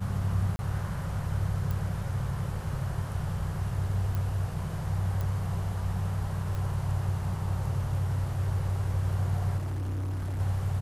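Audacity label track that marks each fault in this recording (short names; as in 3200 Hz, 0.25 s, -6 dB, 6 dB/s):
0.560000	0.590000	gap 30 ms
1.710000	1.710000	pop
4.150000	4.150000	pop
5.210000	5.210000	pop
6.550000	6.550000	pop
9.570000	10.400000	clipped -29.5 dBFS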